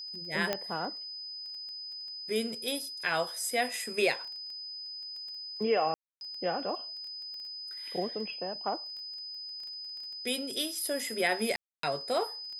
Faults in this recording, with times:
crackle 11/s -40 dBFS
tone 5000 Hz -39 dBFS
0.53 pop -14 dBFS
5.94–6.21 gap 0.271 s
11.56–11.83 gap 0.273 s

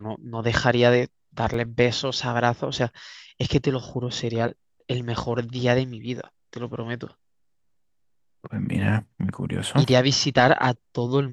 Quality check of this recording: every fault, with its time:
1.54 gap 3.4 ms

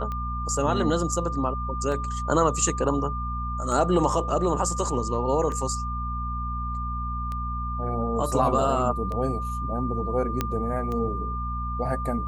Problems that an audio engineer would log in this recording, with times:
hum 60 Hz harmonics 4 -31 dBFS
tick 33 1/3 rpm -21 dBFS
tone 1200 Hz -31 dBFS
10.41 pop -10 dBFS

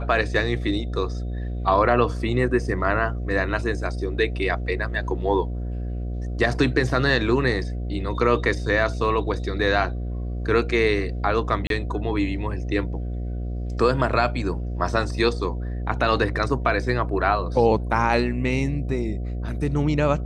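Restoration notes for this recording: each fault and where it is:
buzz 60 Hz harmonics 12 -28 dBFS
11.67–11.7 gap 32 ms

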